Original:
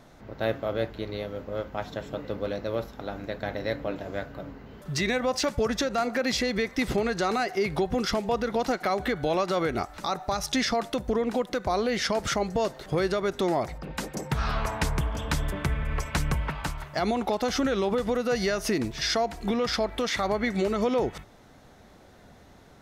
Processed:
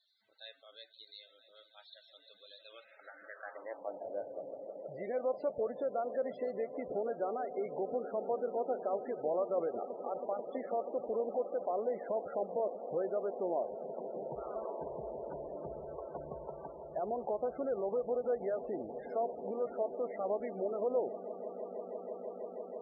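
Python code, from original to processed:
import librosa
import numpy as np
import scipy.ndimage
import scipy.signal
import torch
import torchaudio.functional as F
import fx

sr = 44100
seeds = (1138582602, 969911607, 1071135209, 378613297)

y = fx.echo_swell(x, sr, ms=162, loudest=8, wet_db=-17.5)
y = fx.filter_sweep_bandpass(y, sr, from_hz=4200.0, to_hz=560.0, start_s=2.44, end_s=4.16, q=2.4)
y = fx.spec_topn(y, sr, count=32)
y = y * 10.0 ** (-4.5 / 20.0)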